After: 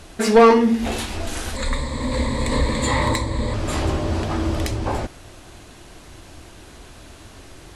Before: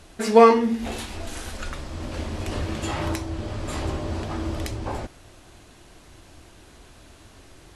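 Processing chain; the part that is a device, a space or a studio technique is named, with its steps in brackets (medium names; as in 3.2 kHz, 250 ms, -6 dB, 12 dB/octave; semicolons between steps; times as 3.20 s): 1.56–3.54 s: rippled EQ curve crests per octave 1, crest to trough 16 dB; saturation between pre-emphasis and de-emphasis (treble shelf 4.4 kHz +11 dB; saturation -12.5 dBFS, distortion -9 dB; treble shelf 4.4 kHz -11 dB); trim +6.5 dB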